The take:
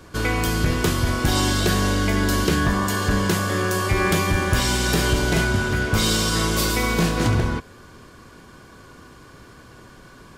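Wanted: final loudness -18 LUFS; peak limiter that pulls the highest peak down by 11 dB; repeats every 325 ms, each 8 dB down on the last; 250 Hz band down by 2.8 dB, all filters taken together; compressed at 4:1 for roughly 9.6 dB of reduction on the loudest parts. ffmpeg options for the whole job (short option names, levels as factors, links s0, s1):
-af "equalizer=f=250:t=o:g=-4,acompressor=threshold=0.0398:ratio=4,alimiter=level_in=1.58:limit=0.0631:level=0:latency=1,volume=0.631,aecho=1:1:325|650|975|1300|1625:0.398|0.159|0.0637|0.0255|0.0102,volume=8.41"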